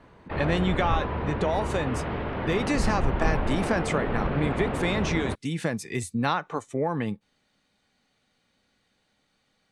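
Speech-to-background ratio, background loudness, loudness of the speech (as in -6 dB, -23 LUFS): 1.0 dB, -30.0 LUFS, -29.0 LUFS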